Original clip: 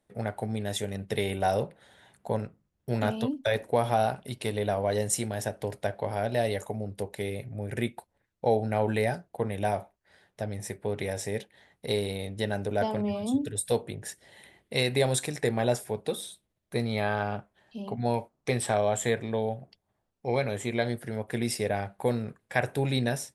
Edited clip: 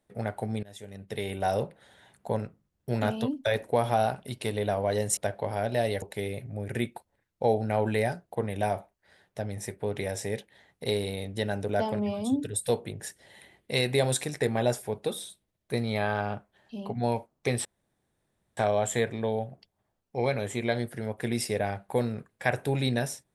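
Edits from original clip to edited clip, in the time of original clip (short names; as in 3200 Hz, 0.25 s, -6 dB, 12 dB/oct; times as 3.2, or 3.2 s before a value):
0.63–1.65 fade in, from -21.5 dB
5.17–5.77 cut
6.62–7.04 cut
18.67 insert room tone 0.92 s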